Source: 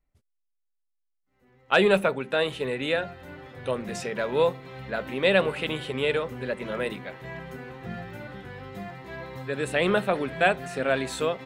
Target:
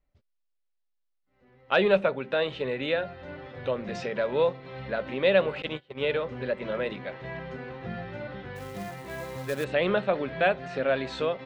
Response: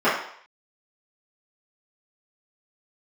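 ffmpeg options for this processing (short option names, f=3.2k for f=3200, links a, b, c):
-filter_complex "[0:a]lowpass=f=5k:w=0.5412,lowpass=f=5k:w=1.3066,asettb=1/sr,asplit=3[a][b][c];[a]atrim=end=5.624[d];[b]atrim=start=5.62:end=6.11,asetpts=PTS-STARTPTS,afade=t=in:d=0.004:c=qsin,afade=t=out:st=0.486:d=0.004:c=qsin,agate=range=-29dB:threshold=-28dB:ratio=16:detection=peak[e];[c]atrim=start=6.106[f];[d][e]acrossfade=d=0.004:c1=hsin:c2=qsin[g];[g][f]acrossfade=d=0.004:c1=qsin:c2=hsin,equalizer=f=570:w=5.1:g=6,asplit=2[h][i];[i]acompressor=threshold=-32dB:ratio=6,volume=-1dB[j];[h][j]amix=inputs=2:normalize=0,asplit=3[k][l][m];[k]afade=t=out:st=8.55:d=0.02[n];[l]acrusher=bits=3:mode=log:mix=0:aa=0.000001,afade=t=in:st=8.55:d=0.02,afade=t=out:st=9.63:d=0.02[o];[m]afade=t=in:st=9.63:d=0.02[p];[n][o][p]amix=inputs=3:normalize=0,volume=-5dB"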